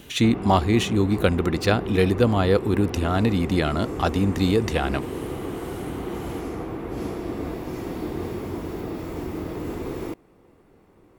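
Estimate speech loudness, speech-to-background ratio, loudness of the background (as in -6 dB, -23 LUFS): -22.5 LUFS, 9.5 dB, -32.0 LUFS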